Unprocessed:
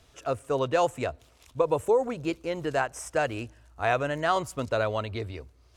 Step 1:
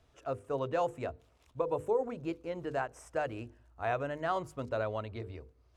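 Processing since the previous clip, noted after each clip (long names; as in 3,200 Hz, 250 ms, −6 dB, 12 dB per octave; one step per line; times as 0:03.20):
high-shelf EQ 2,400 Hz −10.5 dB
mains-hum notches 50/100/150/200/250/300/350/400/450/500 Hz
level −6 dB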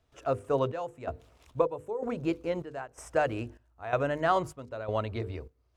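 gate pattern ".xxxxx.." 126 BPM −12 dB
level +7 dB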